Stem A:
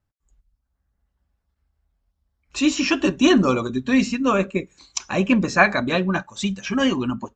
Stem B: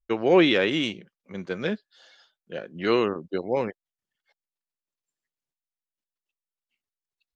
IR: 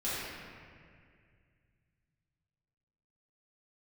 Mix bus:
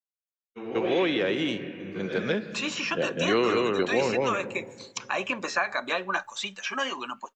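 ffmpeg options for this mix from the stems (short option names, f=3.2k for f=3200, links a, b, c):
-filter_complex "[0:a]highpass=860,acompressor=threshold=-26dB:ratio=2,volume=-2dB,asplit=2[a][b];[1:a]adelay=450,volume=2dB,asplit=3[c][d][e];[d]volume=-18dB[f];[e]volume=-4dB[g];[b]apad=whole_len=344079[h];[c][h]sidechaingate=range=-33dB:threshold=-48dB:ratio=16:detection=peak[i];[2:a]atrim=start_sample=2205[j];[f][j]afir=irnorm=-1:irlink=0[k];[g]aecho=0:1:202:1[l];[a][i][k][l]amix=inputs=4:normalize=0,dynaudnorm=f=270:g=13:m=11.5dB,agate=range=-33dB:threshold=-40dB:ratio=3:detection=peak,acrossover=split=380|1300|3700[m][n][o][p];[m]acompressor=threshold=-30dB:ratio=4[q];[n]acompressor=threshold=-27dB:ratio=4[r];[o]acompressor=threshold=-32dB:ratio=4[s];[p]acompressor=threshold=-43dB:ratio=4[t];[q][r][s][t]amix=inputs=4:normalize=0"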